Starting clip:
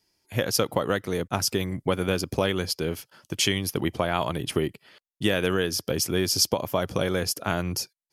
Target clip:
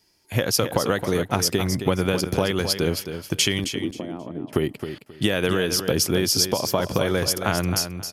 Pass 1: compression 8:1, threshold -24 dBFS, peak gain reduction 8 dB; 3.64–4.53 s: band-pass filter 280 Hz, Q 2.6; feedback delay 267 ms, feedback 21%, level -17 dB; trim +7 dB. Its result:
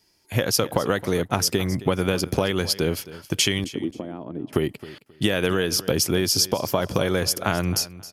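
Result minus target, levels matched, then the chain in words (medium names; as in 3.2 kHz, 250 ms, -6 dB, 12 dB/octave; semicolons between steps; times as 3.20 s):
echo-to-direct -8 dB
compression 8:1, threshold -24 dBFS, peak gain reduction 8 dB; 3.64–4.53 s: band-pass filter 280 Hz, Q 2.6; feedback delay 267 ms, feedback 21%, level -9 dB; trim +7 dB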